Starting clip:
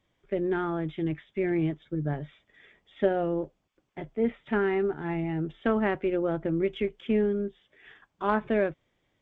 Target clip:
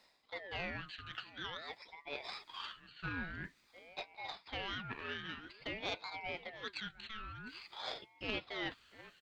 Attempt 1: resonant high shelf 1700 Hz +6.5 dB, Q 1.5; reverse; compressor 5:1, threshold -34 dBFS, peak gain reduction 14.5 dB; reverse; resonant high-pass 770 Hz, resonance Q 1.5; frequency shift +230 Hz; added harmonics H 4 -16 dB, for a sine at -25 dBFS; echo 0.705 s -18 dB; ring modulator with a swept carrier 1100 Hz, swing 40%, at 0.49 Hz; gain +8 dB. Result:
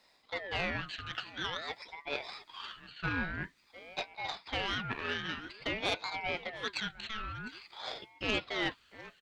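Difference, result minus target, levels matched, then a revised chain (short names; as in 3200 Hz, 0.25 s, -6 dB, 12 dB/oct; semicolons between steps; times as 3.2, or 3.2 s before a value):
compressor: peak gain reduction -7 dB
resonant high shelf 1700 Hz +6.5 dB, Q 1.5; reverse; compressor 5:1, threshold -42.5 dBFS, peak gain reduction 21 dB; reverse; resonant high-pass 770 Hz, resonance Q 1.5; frequency shift +230 Hz; added harmonics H 4 -16 dB, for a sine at -25 dBFS; echo 0.705 s -18 dB; ring modulator with a swept carrier 1100 Hz, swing 40%, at 0.49 Hz; gain +8 dB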